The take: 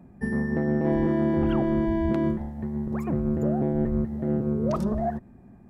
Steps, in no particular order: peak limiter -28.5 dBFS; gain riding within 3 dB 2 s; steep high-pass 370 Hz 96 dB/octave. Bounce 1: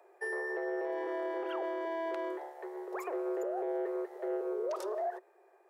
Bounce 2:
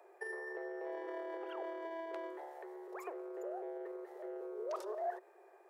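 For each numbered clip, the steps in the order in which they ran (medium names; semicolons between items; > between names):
steep high-pass > gain riding > peak limiter; gain riding > peak limiter > steep high-pass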